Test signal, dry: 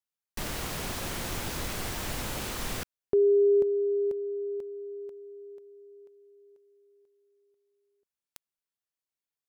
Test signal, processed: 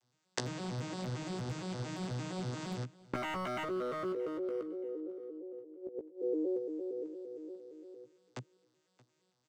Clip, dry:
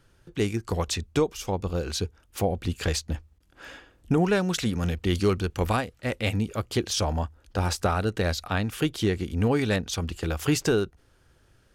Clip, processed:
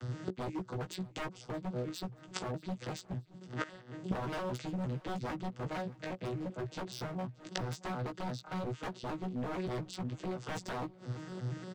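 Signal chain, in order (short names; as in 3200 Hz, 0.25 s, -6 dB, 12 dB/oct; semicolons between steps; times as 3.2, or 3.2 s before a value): arpeggiated vocoder major triad, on B2, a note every 0.115 s; high shelf 5600 Hz +8.5 dB; in parallel at +1 dB: compressor 20:1, threshold -37 dBFS; on the sum: wavefolder -25.5 dBFS; flipped gate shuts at -39 dBFS, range -24 dB; doubler 16 ms -5.5 dB; on a send: feedback echo 0.626 s, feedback 28%, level -22 dB; on the sum: gain +15.5 dB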